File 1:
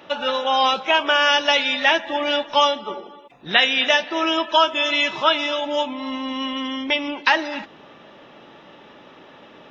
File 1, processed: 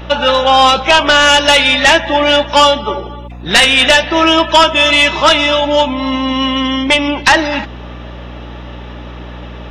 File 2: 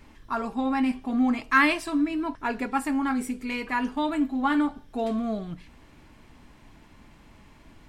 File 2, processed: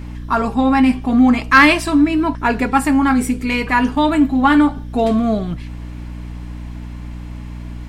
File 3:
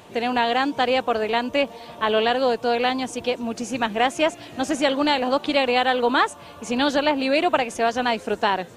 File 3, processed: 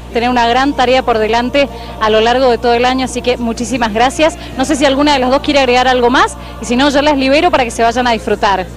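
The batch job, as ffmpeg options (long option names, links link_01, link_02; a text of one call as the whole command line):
ffmpeg -i in.wav -af "aeval=exprs='0.891*sin(PI/2*2.82*val(0)/0.891)':channel_layout=same,aeval=exprs='val(0)+0.0447*(sin(2*PI*60*n/s)+sin(2*PI*2*60*n/s)/2+sin(2*PI*3*60*n/s)/3+sin(2*PI*4*60*n/s)/4+sin(2*PI*5*60*n/s)/5)':channel_layout=same,volume=-1dB" out.wav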